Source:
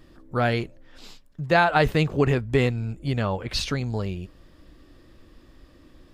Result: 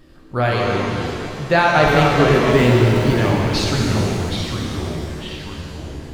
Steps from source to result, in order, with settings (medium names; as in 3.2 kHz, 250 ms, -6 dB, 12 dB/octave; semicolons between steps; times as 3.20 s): 2.49–3.14 s: jump at every zero crossing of -30 dBFS; ever faster or slower copies 103 ms, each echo -3 st, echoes 3, each echo -6 dB; pitch-shifted reverb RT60 2.4 s, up +7 st, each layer -8 dB, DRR -1 dB; trim +2.5 dB